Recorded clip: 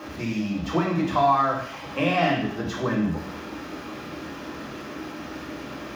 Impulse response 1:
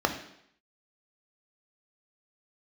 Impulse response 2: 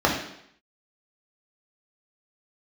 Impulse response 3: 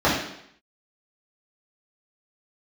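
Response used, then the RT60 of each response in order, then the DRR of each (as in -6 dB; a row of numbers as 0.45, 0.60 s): 2; 0.70, 0.70, 0.70 s; 5.0, -2.0, -9.0 dB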